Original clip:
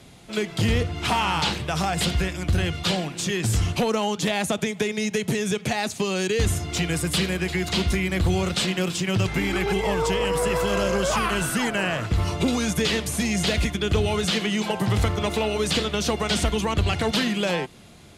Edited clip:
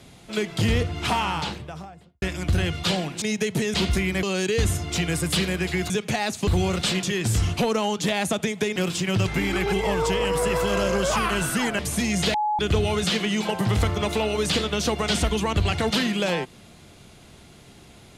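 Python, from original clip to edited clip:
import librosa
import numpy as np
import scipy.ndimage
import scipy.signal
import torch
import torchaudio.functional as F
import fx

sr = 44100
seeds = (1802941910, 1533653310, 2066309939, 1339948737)

y = fx.studio_fade_out(x, sr, start_s=0.97, length_s=1.25)
y = fx.edit(y, sr, fx.move(start_s=3.22, length_s=1.73, to_s=8.76),
    fx.swap(start_s=5.47, length_s=0.57, other_s=7.71, other_length_s=0.49),
    fx.cut(start_s=11.79, length_s=1.21),
    fx.bleep(start_s=13.55, length_s=0.25, hz=845.0, db=-20.5), tone=tone)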